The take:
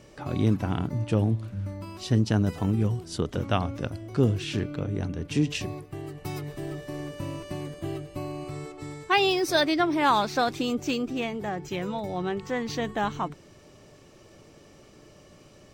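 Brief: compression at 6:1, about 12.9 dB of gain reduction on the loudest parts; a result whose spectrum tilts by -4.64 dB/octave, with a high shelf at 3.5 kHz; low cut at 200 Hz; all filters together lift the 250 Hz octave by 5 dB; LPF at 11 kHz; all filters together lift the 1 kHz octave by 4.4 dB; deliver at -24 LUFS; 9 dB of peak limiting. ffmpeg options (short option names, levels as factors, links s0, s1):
-af "highpass=200,lowpass=11000,equalizer=f=250:t=o:g=8,equalizer=f=1000:t=o:g=4.5,highshelf=f=3500:g=7.5,acompressor=threshold=0.0398:ratio=6,volume=3.16,alimiter=limit=0.224:level=0:latency=1"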